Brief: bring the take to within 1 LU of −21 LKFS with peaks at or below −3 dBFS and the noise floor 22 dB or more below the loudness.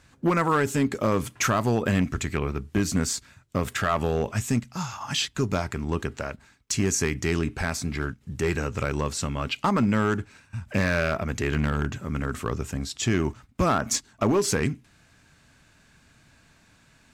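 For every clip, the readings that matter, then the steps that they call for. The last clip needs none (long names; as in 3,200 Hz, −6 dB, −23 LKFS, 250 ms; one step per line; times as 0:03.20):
share of clipped samples 0.9%; peaks flattened at −15.5 dBFS; integrated loudness −26.5 LKFS; sample peak −15.5 dBFS; target loudness −21.0 LKFS
→ clipped peaks rebuilt −15.5 dBFS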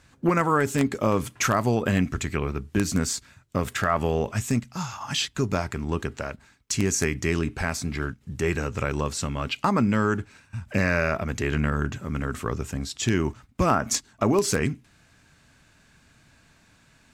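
share of clipped samples 0.0%; integrated loudness −26.0 LKFS; sample peak −6.5 dBFS; target loudness −21.0 LKFS
→ level +5 dB
brickwall limiter −3 dBFS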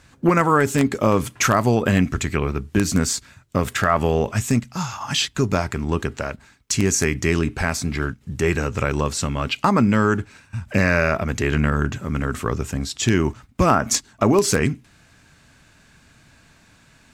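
integrated loudness −21.0 LKFS; sample peak −3.0 dBFS; background noise floor −54 dBFS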